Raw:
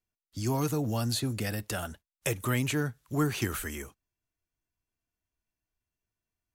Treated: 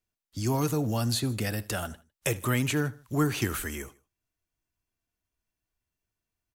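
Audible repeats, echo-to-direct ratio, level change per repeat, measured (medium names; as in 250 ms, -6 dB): 2, -20.0 dB, -6.5 dB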